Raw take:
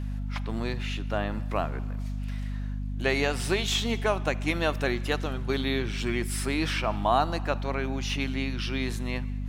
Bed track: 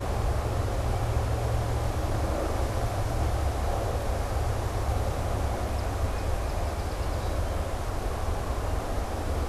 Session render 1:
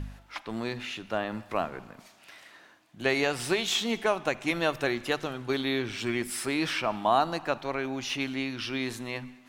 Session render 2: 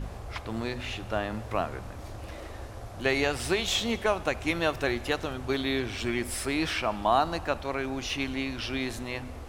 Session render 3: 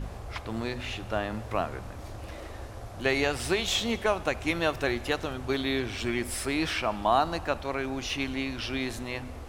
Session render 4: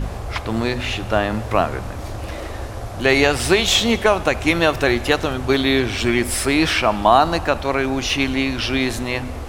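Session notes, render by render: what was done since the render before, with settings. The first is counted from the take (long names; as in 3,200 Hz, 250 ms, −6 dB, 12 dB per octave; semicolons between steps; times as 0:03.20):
hum removal 50 Hz, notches 5
mix in bed track −13 dB
no processing that can be heard
level +11.5 dB; brickwall limiter −2 dBFS, peak gain reduction 2.5 dB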